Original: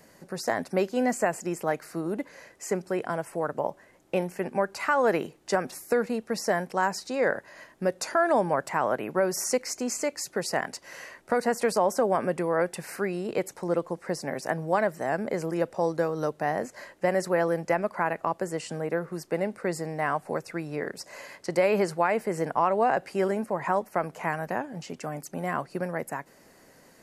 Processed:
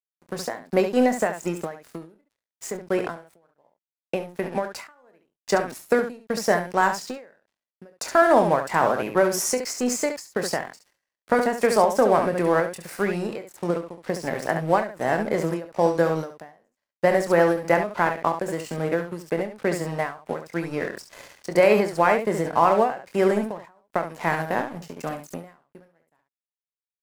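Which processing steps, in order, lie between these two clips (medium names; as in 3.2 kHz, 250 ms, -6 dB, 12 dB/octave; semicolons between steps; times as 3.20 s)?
crossover distortion -43 dBFS; early reflections 24 ms -10.5 dB, 69 ms -7 dB; endings held to a fixed fall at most 130 dB/s; trim +6 dB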